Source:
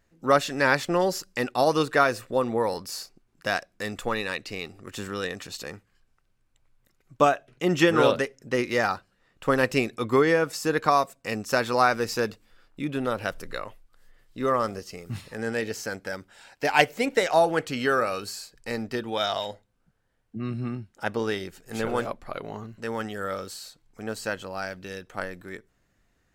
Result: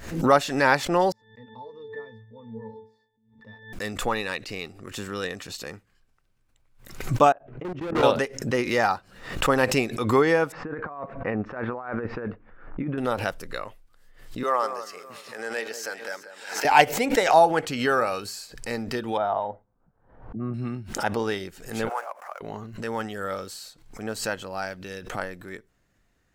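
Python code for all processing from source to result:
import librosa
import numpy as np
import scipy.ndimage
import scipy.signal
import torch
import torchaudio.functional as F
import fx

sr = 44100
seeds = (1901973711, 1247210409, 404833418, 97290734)

y = fx.chain(x, sr, fx.high_shelf(hz=5600.0, db=-5.5),
    fx.octave_resonator(note='A', decay_s=0.41), at=(1.12, 3.73))
y = fx.chain(y, sr, fx.level_steps(step_db=23),
    fx.lowpass(hz=1100.0, slope=12),
    fx.clip_hard(threshold_db=-29.5), at=(7.32, 8.03))
y = fx.chain(y, sr, fx.lowpass(hz=1800.0, slope=24),
    fx.over_compress(threshold_db=-32.0, ratio=-1.0), at=(10.52, 12.98))
y = fx.chain(y, sr, fx.highpass(hz=520.0, slope=12),
    fx.echo_alternate(ms=186, hz=1400.0, feedback_pct=54, wet_db=-9.5), at=(14.43, 16.65))
y = fx.chain(y, sr, fx.dynamic_eq(hz=730.0, q=1.0, threshold_db=-36.0, ratio=4.0, max_db=-3),
    fx.lowpass_res(hz=960.0, q=1.6), at=(19.17, 20.54))
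y = fx.chain(y, sr, fx.median_filter(points=15),
    fx.highpass(hz=700.0, slope=24),
    fx.peak_eq(hz=3800.0, db=-14.0, octaves=0.96), at=(21.89, 22.41))
y = fx.dynamic_eq(y, sr, hz=830.0, q=3.0, threshold_db=-39.0, ratio=4.0, max_db=7)
y = fx.pre_swell(y, sr, db_per_s=91.0)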